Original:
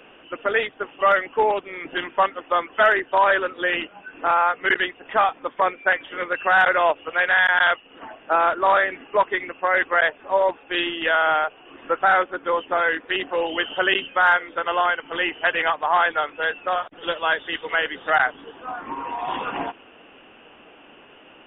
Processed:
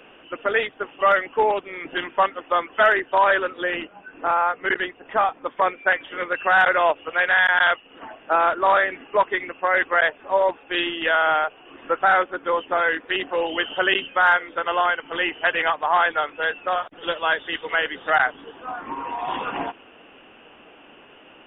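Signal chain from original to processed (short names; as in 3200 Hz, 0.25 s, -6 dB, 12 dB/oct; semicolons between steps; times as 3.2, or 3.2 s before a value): 3.63–5.46 high shelf 2300 Hz -8.5 dB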